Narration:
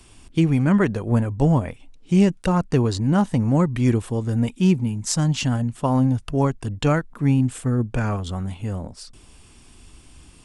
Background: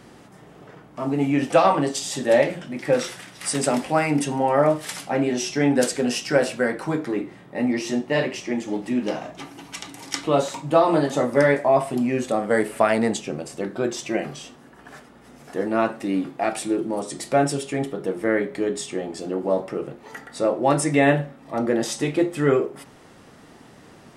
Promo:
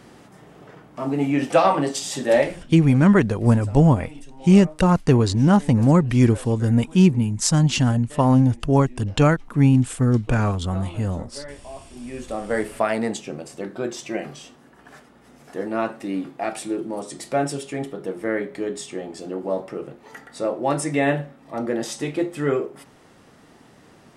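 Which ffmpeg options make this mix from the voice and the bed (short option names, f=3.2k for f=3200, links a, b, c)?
-filter_complex "[0:a]adelay=2350,volume=3dB[a];[1:a]volume=18dB,afade=t=out:st=2.37:d=0.41:silence=0.0891251,afade=t=in:st=11.92:d=0.66:silence=0.125893[b];[a][b]amix=inputs=2:normalize=0"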